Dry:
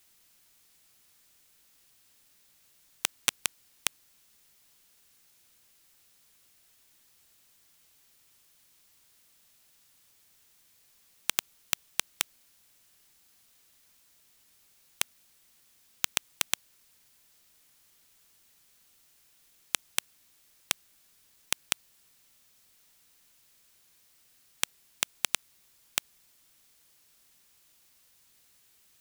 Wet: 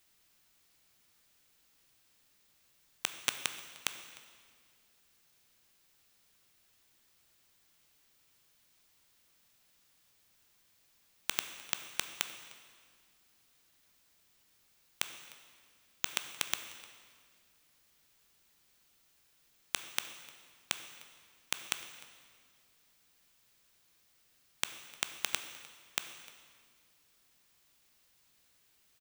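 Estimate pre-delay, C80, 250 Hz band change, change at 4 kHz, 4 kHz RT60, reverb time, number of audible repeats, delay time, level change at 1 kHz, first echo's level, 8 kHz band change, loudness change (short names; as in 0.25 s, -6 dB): 12 ms, 10.0 dB, -3.0 dB, -4.0 dB, 1.7 s, 1.9 s, 1, 0.303 s, -3.0 dB, -21.5 dB, -7.0 dB, -6.0 dB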